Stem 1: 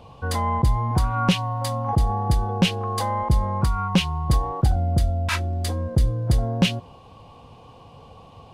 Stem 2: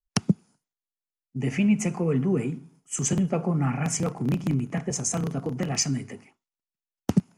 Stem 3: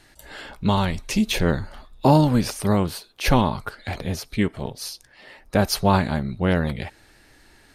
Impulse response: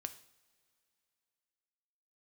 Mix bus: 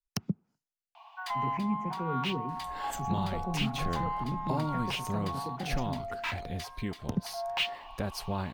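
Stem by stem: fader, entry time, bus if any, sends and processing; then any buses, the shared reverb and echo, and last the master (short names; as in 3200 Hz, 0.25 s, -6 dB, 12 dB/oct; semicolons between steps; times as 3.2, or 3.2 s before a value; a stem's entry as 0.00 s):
-1.0 dB, 0.95 s, no send, rippled Chebyshev high-pass 660 Hz, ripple 6 dB; overdrive pedal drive 14 dB, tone 2500 Hz, clips at -11.5 dBFS; auto duck -9 dB, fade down 1.60 s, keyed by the second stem
-11.5 dB, 0.00 s, no send, treble ducked by the level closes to 1200 Hz, closed at -21.5 dBFS; high shelf 4900 Hz +9 dB
-5.5 dB, 2.45 s, no send, gate with hold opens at -43 dBFS; compressor 2:1, threshold -35 dBFS, peak gain reduction 13.5 dB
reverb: off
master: low shelf 96 Hz +6 dB; decimation joined by straight lines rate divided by 2×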